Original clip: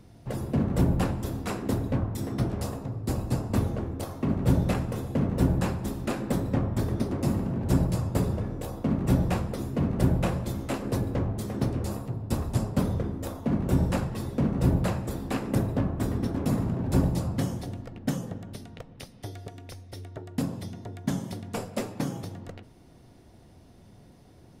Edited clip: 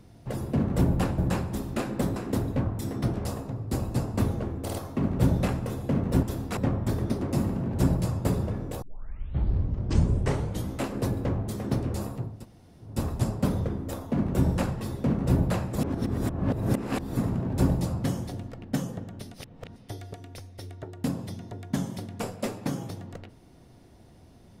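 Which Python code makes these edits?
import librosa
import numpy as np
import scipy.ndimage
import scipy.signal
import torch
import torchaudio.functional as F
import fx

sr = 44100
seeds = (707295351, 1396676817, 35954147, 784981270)

y = fx.edit(x, sr, fx.swap(start_s=1.18, length_s=0.34, other_s=5.49, other_length_s=0.98),
    fx.stutter(start_s=4.0, slice_s=0.05, count=3),
    fx.tape_start(start_s=8.72, length_s=1.95),
    fx.insert_room_tone(at_s=12.24, length_s=0.56, crossfade_s=0.24),
    fx.reverse_span(start_s=15.12, length_s=1.39),
    fx.reverse_span(start_s=18.68, length_s=0.42), tone=tone)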